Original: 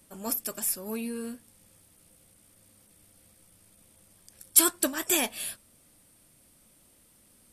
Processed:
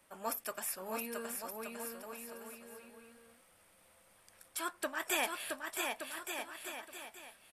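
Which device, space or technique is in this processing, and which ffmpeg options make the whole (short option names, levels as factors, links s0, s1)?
DJ mixer with the lows and highs turned down: -filter_complex "[0:a]acrossover=split=560 2700:gain=0.158 1 0.224[s0][s1][s2];[s0][s1][s2]amix=inputs=3:normalize=0,alimiter=level_in=1.12:limit=0.0631:level=0:latency=1:release=375,volume=0.891,asettb=1/sr,asplit=3[s3][s4][s5];[s3]atrim=end=4.474[s6];[s4]atrim=start=4.47:end=5,asetpts=PTS-STARTPTS,afade=t=in:d=0.004:c=qsin,afade=t=out:st=0.526:d=0.004:c=qsin,highshelf=f=4800:g=-6[s7];[s5]atrim=start=4.996[s8];[s6][s7]acrossfade=d=0.004:c1=hsin:c2=qsin[s9];[s9][s8]acrossfade=d=0.004:c1=qsin:c2=hsin,aecho=1:1:670|1172|1549|1832|2044:0.631|0.398|0.251|0.158|0.1,volume=1.33"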